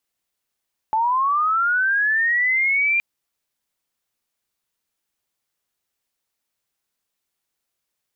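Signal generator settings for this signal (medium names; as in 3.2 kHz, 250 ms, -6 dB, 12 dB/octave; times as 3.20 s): sweep linear 860 Hz -> 2.4 kHz -16.5 dBFS -> -16 dBFS 2.07 s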